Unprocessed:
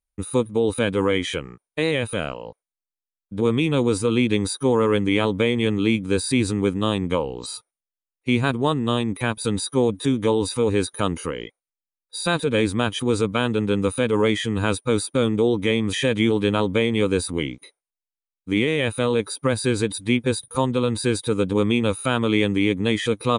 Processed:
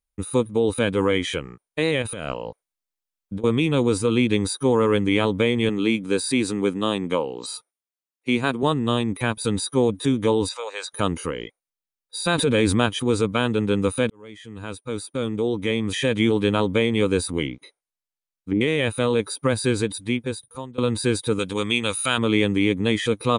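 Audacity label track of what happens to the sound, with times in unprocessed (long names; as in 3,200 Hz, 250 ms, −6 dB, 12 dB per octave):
2.020000	3.440000	compressor whose output falls as the input rises −30 dBFS
5.690000	8.630000	high-pass filter 190 Hz
10.490000	10.920000	Chebyshev band-pass filter 570–8,100 Hz, order 4
12.380000	12.860000	envelope flattener amount 70%
14.100000	16.290000	fade in
17.460000	18.610000	treble cut that deepens with the level closes to 560 Hz, closed at −21.5 dBFS
19.700000	20.780000	fade out, to −21 dB
21.390000	22.180000	tilt shelving filter lows −7.5 dB, about 1,200 Hz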